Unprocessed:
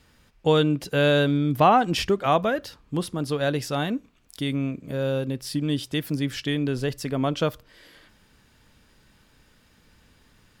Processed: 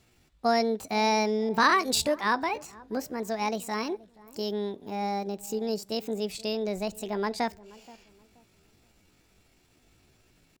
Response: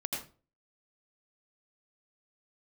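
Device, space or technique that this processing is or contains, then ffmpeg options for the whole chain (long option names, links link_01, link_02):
chipmunk voice: -filter_complex "[0:a]asetrate=66075,aresample=44100,atempo=0.66742,asplit=2[link_01][link_02];[link_02]adelay=477,lowpass=frequency=830:poles=1,volume=-19.5dB,asplit=2[link_03][link_04];[link_04]adelay=477,lowpass=frequency=830:poles=1,volume=0.33,asplit=2[link_05][link_06];[link_06]adelay=477,lowpass=frequency=830:poles=1,volume=0.33[link_07];[link_01][link_03][link_05][link_07]amix=inputs=4:normalize=0,asettb=1/sr,asplit=3[link_08][link_09][link_10];[link_08]atrim=end=1.494[link_11];[link_09]atrim=start=1.49:end=2.21,asetpts=PTS-STARTPTS,afade=type=in:duration=0.004:curve=qsin,afade=type=out:start_time=0.716:duration=0.004:curve=qsin,adynamicequalizer=threshold=0.02:dfrequency=2700:dqfactor=0.7:tfrequency=2700:tqfactor=0.7:attack=5:release=100:ratio=0.375:range=4:mode=boostabove:tftype=highshelf[link_12];[link_10]atrim=start=2.206[link_13];[link_11][link_12]acrossfade=duration=0.004:curve1=hsin:curve2=qsin[link_14];[link_14][link_13]acrossfade=duration=0.004:curve1=qsin:curve2=hsin,volume=-5dB"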